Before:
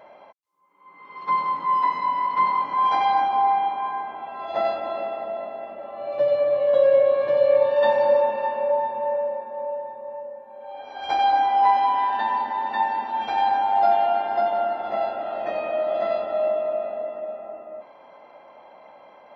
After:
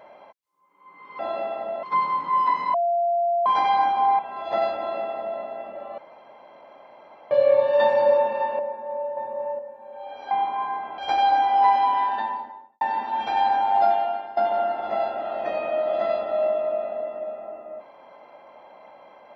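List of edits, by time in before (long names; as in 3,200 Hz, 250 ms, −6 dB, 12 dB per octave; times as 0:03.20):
0:02.10–0:02.82: beep over 690 Hz −19 dBFS
0:03.55–0:04.22: move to 0:10.99
0:04.80–0:05.44: duplicate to 0:01.19
0:06.01–0:07.34: fill with room tone
0:08.62–0:09.27: remove
0:09.85–0:10.27: clip gain +5.5 dB
0:11.96–0:12.82: fade out and dull
0:13.81–0:14.38: fade out, to −15 dB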